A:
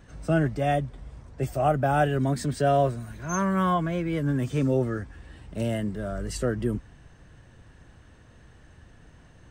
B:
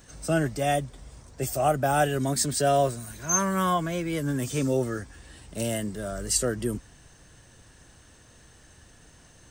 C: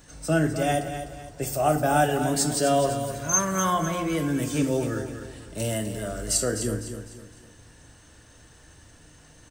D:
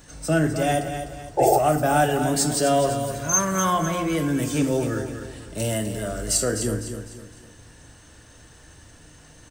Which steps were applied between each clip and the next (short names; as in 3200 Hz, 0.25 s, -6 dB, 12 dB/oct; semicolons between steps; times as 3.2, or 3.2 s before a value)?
tone controls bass -4 dB, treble +15 dB
feedback echo 0.252 s, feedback 37%, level -9.5 dB; FDN reverb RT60 0.63 s, low-frequency decay 1.25×, high-frequency decay 0.85×, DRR 6.5 dB
in parallel at -7 dB: soft clip -23 dBFS, distortion -10 dB; on the sum: painted sound noise, 1.37–1.59, 330–870 Hz -17 dBFS